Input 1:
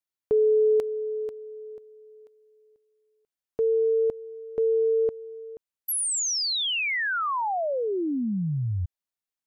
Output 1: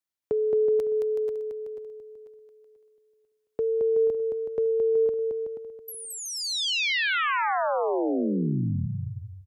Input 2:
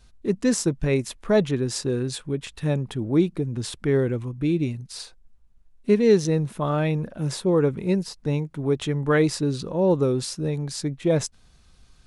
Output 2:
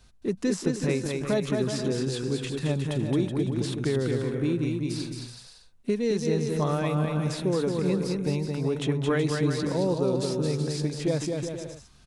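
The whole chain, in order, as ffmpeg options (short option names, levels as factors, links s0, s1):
-filter_complex "[0:a]acrossover=split=83|4200[s0][s1][s2];[s0]acompressor=threshold=0.00126:ratio=4[s3];[s1]acompressor=threshold=0.0631:ratio=4[s4];[s2]acompressor=threshold=0.00794:ratio=4[s5];[s3][s4][s5]amix=inputs=3:normalize=0,aecho=1:1:220|374|481.8|557.3|610.1:0.631|0.398|0.251|0.158|0.1"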